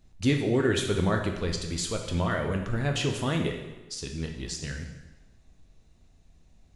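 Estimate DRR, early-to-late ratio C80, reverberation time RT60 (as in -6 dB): 2.5 dB, 8.0 dB, 1.1 s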